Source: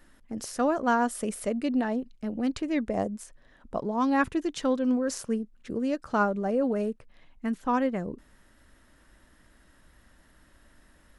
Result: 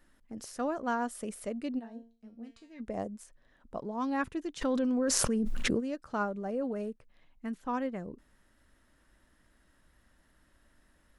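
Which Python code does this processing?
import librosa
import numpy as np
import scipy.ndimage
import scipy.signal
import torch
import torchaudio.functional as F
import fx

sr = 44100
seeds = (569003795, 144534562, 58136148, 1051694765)

y = fx.comb_fb(x, sr, f0_hz=230.0, decay_s=0.37, harmonics='all', damping=0.0, mix_pct=90, at=(1.78, 2.79), fade=0.02)
y = fx.env_flatten(y, sr, amount_pct=100, at=(4.61, 5.79), fade=0.02)
y = y * librosa.db_to_amplitude(-7.5)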